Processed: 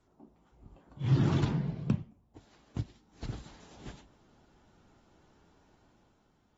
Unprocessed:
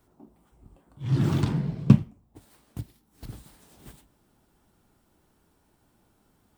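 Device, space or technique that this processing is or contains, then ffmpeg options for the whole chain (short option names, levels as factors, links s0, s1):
low-bitrate web radio: -af "dynaudnorm=f=110:g=13:m=2.24,alimiter=limit=0.266:level=0:latency=1:release=353,volume=0.562" -ar 48000 -c:a aac -b:a 24k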